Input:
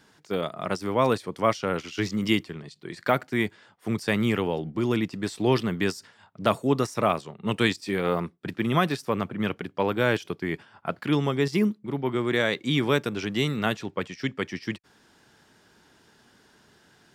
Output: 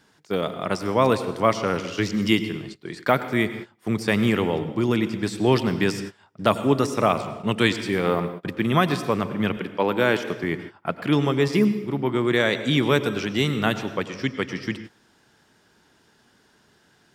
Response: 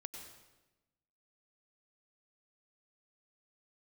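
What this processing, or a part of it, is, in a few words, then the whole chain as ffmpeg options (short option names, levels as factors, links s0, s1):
keyed gated reverb: -filter_complex "[0:a]asplit=3[s0][s1][s2];[1:a]atrim=start_sample=2205[s3];[s1][s3]afir=irnorm=-1:irlink=0[s4];[s2]apad=whole_len=756250[s5];[s4][s5]sidechaingate=range=0.0562:threshold=0.00562:ratio=16:detection=peak,volume=1.26[s6];[s0][s6]amix=inputs=2:normalize=0,asettb=1/sr,asplit=3[s7][s8][s9];[s7]atrim=end=9.574[s10];[s8]atrim=start=9.57:end=10.44,asetpts=PTS-STARTPTS,afade=t=in:d=0.004:c=qsin,afade=t=out:st=0.866:d=0.004:c=qsin,highpass=150[s11];[s9]atrim=start=10.436[s12];[s10][s11]acrossfade=d=0.004:c1=hsin:c2=qsin[s13];[s13][s12]acrossfade=d=0.004:c1=qsin:c2=hsin,volume=0.841"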